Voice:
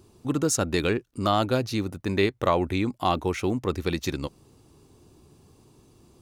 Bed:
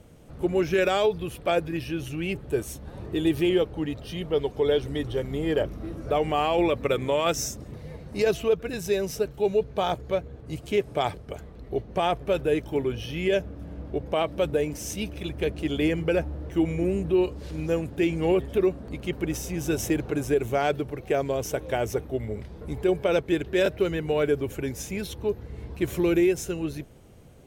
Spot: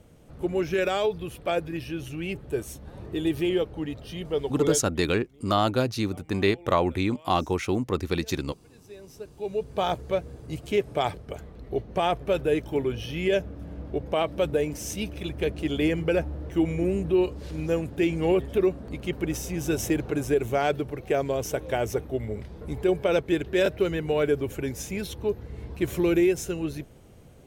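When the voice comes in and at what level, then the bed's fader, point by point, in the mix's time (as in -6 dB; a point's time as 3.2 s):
4.25 s, 0.0 dB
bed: 4.71 s -2.5 dB
4.94 s -26.5 dB
8.67 s -26.5 dB
9.81 s 0 dB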